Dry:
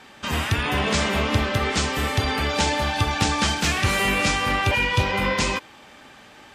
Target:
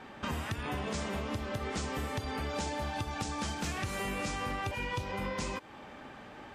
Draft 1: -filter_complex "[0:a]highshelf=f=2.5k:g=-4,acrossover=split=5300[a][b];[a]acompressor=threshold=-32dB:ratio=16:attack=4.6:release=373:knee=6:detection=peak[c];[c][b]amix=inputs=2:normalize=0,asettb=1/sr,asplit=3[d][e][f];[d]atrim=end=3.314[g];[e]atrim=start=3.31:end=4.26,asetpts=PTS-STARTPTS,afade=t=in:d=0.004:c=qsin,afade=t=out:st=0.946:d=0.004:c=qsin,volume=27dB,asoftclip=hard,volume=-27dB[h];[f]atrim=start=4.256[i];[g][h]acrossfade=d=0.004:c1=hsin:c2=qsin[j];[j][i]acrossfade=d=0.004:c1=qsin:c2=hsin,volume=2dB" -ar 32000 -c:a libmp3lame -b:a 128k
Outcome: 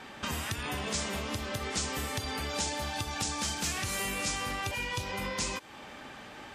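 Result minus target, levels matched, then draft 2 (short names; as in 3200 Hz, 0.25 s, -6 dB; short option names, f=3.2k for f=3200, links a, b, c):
4000 Hz band +4.0 dB
-filter_complex "[0:a]highshelf=f=2.5k:g=-15.5,acrossover=split=5300[a][b];[a]acompressor=threshold=-32dB:ratio=16:attack=4.6:release=373:knee=6:detection=peak[c];[c][b]amix=inputs=2:normalize=0,asettb=1/sr,asplit=3[d][e][f];[d]atrim=end=3.314[g];[e]atrim=start=3.31:end=4.26,asetpts=PTS-STARTPTS,afade=t=in:d=0.004:c=qsin,afade=t=out:st=0.946:d=0.004:c=qsin,volume=27dB,asoftclip=hard,volume=-27dB[h];[f]atrim=start=4.256[i];[g][h]acrossfade=d=0.004:c1=hsin:c2=qsin[j];[j][i]acrossfade=d=0.004:c1=qsin:c2=hsin,volume=2dB" -ar 32000 -c:a libmp3lame -b:a 128k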